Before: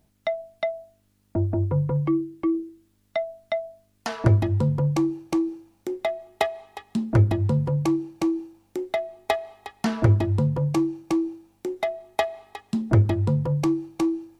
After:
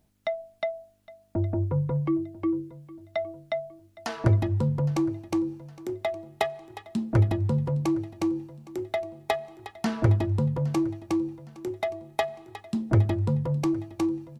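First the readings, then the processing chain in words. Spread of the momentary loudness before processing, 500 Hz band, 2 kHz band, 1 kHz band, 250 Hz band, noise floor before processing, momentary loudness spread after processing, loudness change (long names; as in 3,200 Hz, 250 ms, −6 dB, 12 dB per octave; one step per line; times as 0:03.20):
12 LU, −3.0 dB, −3.0 dB, −3.0 dB, −3.0 dB, −66 dBFS, 13 LU, −3.0 dB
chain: repeating echo 813 ms, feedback 41%, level −19.5 dB
level −3 dB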